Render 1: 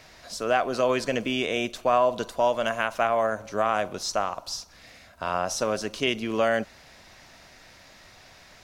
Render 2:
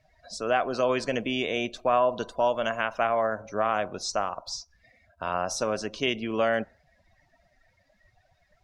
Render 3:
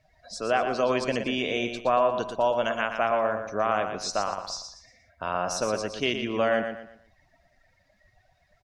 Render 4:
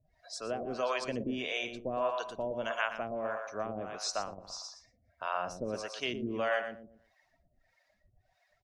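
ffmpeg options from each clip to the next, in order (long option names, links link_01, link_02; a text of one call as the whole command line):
ffmpeg -i in.wav -af "afftdn=noise_reduction=23:noise_floor=-44,volume=-1.5dB" out.wav
ffmpeg -i in.wav -af "aecho=1:1:118|236|354|472:0.422|0.143|0.0487|0.0166" out.wav
ffmpeg -i in.wav -filter_complex "[0:a]acrossover=split=520[link_01][link_02];[link_01]aeval=exprs='val(0)*(1-1/2+1/2*cos(2*PI*1.6*n/s))':channel_layout=same[link_03];[link_02]aeval=exprs='val(0)*(1-1/2-1/2*cos(2*PI*1.6*n/s))':channel_layout=same[link_04];[link_03][link_04]amix=inputs=2:normalize=0,volume=-3dB" out.wav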